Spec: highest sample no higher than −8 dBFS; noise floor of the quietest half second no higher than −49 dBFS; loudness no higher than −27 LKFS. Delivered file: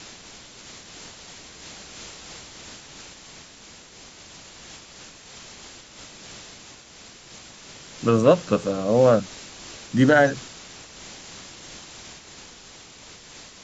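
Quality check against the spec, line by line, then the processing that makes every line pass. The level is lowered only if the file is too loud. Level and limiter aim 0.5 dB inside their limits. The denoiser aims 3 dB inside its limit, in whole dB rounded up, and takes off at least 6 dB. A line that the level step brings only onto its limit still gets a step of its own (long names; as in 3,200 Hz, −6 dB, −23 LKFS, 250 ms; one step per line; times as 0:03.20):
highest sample −5.0 dBFS: out of spec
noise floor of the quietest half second −47 dBFS: out of spec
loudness −20.0 LKFS: out of spec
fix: level −7.5 dB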